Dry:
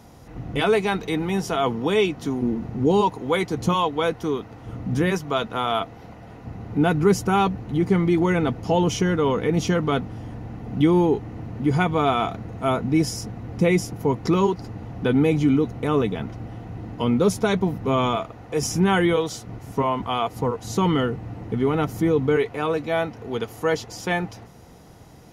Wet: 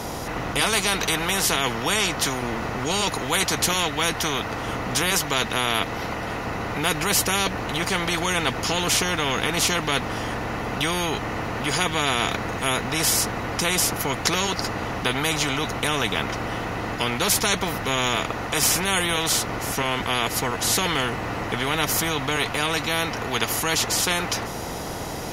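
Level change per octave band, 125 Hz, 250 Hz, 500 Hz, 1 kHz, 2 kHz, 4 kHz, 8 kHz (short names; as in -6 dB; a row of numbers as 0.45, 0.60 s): -5.0, -7.0, -5.5, +0.5, +6.5, +10.5, +13.5 dB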